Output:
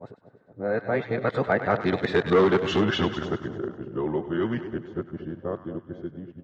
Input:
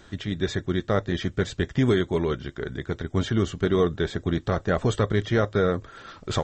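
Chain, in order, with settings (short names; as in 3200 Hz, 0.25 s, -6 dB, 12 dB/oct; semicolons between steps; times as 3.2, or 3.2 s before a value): whole clip reversed; Doppler pass-by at 2.45, 36 m/s, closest 17 m; low-pass opened by the level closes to 330 Hz, open at -20.5 dBFS; hard clip -20 dBFS, distortion -12 dB; HPF 110 Hz 12 dB/oct; low shelf 150 Hz +7 dB; compressor 1.5:1, threshold -34 dBFS, peak gain reduction 5 dB; RIAA curve recording; split-band echo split 790 Hz, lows 0.232 s, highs 99 ms, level -11 dB; treble ducked by the level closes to 1700 Hz, closed at -30.5 dBFS; AGC gain up to 8 dB; gain +5.5 dB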